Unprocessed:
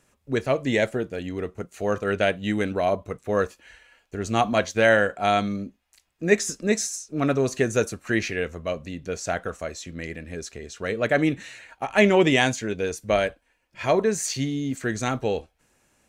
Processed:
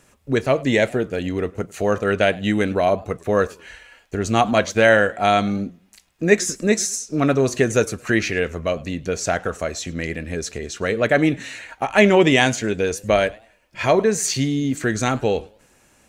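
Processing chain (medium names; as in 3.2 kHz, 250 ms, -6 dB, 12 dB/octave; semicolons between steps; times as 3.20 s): in parallel at 0 dB: compression, threshold -31 dBFS, peak gain reduction 17.5 dB; on the sum: modulated delay 103 ms, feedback 31%, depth 213 cents, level -24 dB; trim +2.5 dB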